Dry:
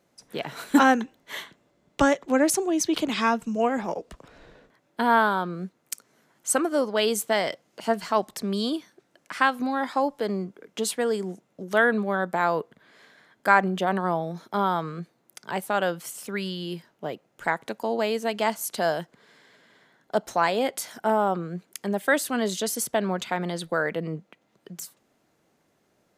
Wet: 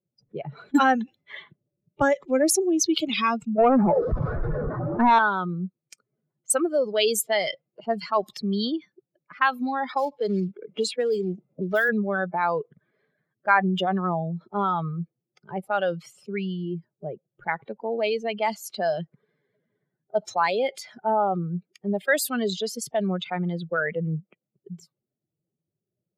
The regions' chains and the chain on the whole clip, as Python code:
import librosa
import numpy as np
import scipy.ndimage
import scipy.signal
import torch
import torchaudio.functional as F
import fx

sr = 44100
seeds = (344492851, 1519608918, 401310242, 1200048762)

y = fx.chain(x, sr, fx.zero_step(step_db=-27.0),
    fx.lowpass(hz=1500.0, slope=24),
    fx.leveller(passes=2), at=(3.58, 5.19))
y = fx.chain(y, sr, fx.highpass(hz=70.0, slope=12),
    fx.quant_float(bits=2),
    fx.band_squash(depth_pct=70), at=(9.89, 11.89))
y = fx.bin_expand(y, sr, power=2.0)
y = fx.env_lowpass(y, sr, base_hz=490.0, full_db=-26.0)
y = fx.env_flatten(y, sr, amount_pct=50)